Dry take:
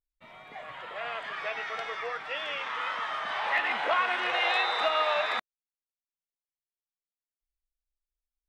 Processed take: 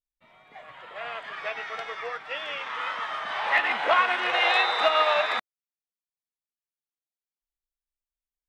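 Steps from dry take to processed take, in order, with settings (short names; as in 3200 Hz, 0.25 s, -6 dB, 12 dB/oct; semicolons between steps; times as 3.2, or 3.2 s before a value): upward expander 1.5:1, over -49 dBFS; gain +6 dB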